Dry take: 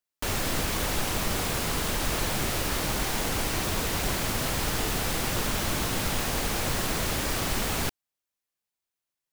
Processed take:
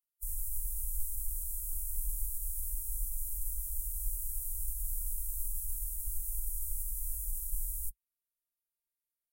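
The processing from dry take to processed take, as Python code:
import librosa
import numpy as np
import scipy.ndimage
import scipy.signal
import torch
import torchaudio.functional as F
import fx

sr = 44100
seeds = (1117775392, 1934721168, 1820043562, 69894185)

y = fx.pitch_keep_formants(x, sr, semitones=-5.5)
y = scipy.signal.sosfilt(scipy.signal.cheby2(4, 50, [120.0, 4200.0], 'bandstop', fs=sr, output='sos'), y)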